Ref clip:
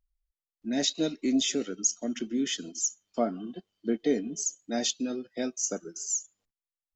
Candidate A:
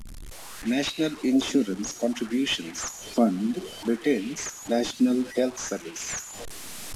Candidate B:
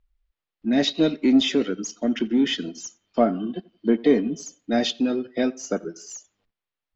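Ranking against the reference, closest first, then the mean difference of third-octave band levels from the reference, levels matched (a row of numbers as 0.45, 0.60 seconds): B, A; 3.5, 10.0 decibels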